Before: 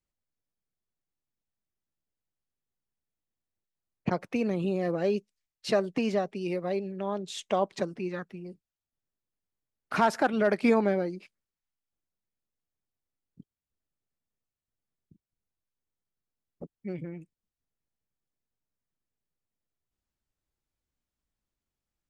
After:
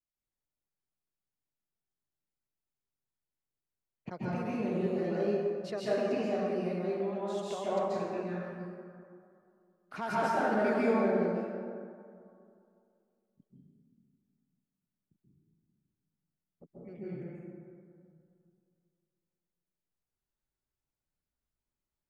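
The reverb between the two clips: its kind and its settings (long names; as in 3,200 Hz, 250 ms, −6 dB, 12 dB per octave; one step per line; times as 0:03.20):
dense smooth reverb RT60 2.4 s, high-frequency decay 0.4×, pre-delay 120 ms, DRR −9.5 dB
level −14 dB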